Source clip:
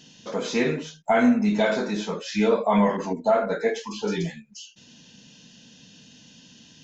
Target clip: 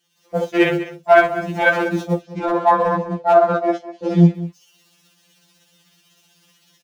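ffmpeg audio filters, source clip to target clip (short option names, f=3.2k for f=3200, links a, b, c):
-filter_complex "[0:a]aeval=exprs='val(0)+0.5*0.0447*sgn(val(0))':c=same,agate=range=-22dB:threshold=-24dB:ratio=16:detection=peak,asettb=1/sr,asplit=3[a][b][c];[a]atrim=end=2.194[d];[b]atrim=start=2.19:end=4.35,asetpts=PTS-STARTPTS,afade=t=in:d=0.004:c=qsin,afade=t=out:st=2.156:d=0.004:c=qsin,lowpass=4.7k[e];[c]atrim=start=4.346[f];[d][e]acrossfade=d=0.004:c1=hsin:c2=qsin[g];[g][f]acrossfade=d=0.004:c1=qsin:c2=hsin,afwtdn=0.0447,highpass=220,bandreject=f=50:t=h:w=6,bandreject=f=100:t=h:w=6,bandreject=f=150:t=h:w=6,bandreject=f=200:t=h:w=6,bandreject=f=250:t=h:w=6,bandreject=f=300:t=h:w=6,dynaudnorm=f=130:g=3:m=13dB,tremolo=f=16:d=0.4,asoftclip=type=hard:threshold=-5dB,asplit=2[h][i];[i]adelay=198.3,volume=-16dB,highshelf=f=4k:g=-4.46[j];[h][j]amix=inputs=2:normalize=0,alimiter=level_in=7dB:limit=-1dB:release=50:level=0:latency=1,afftfilt=real='re*2.83*eq(mod(b,8),0)':imag='im*2.83*eq(mod(b,8),0)':win_size=2048:overlap=0.75,volume=-2dB"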